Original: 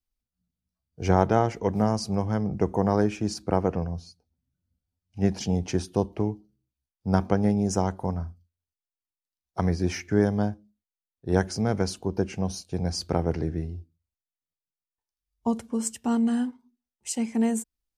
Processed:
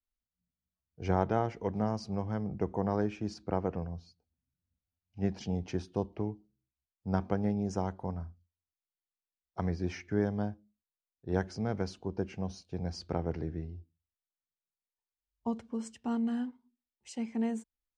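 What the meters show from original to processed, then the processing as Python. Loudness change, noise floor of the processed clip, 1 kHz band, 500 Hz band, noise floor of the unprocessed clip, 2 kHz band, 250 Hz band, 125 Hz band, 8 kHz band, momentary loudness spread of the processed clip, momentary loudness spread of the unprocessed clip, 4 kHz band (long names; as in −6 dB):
−8.0 dB, below −85 dBFS, −8.0 dB, −8.0 dB, below −85 dBFS, −8.0 dB, −8.0 dB, −8.0 dB, −17.0 dB, 11 LU, 11 LU, −11.5 dB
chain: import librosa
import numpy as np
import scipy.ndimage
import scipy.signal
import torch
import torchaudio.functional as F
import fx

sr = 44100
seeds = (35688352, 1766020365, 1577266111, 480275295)

y = scipy.signal.sosfilt(scipy.signal.butter(2, 4400.0, 'lowpass', fs=sr, output='sos'), x)
y = y * librosa.db_to_amplitude(-8.0)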